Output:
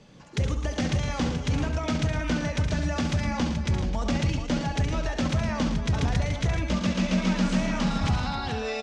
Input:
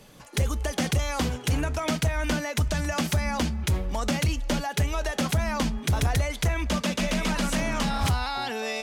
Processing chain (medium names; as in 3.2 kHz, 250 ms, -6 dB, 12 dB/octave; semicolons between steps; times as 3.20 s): low-pass 6.7 kHz 24 dB/octave; peaking EQ 180 Hz +5.5 dB 2.1 oct; multi-tap echo 68/111/134/259/429 ms -8/-9/-16.5/-14/-8.5 dB; trim -4.5 dB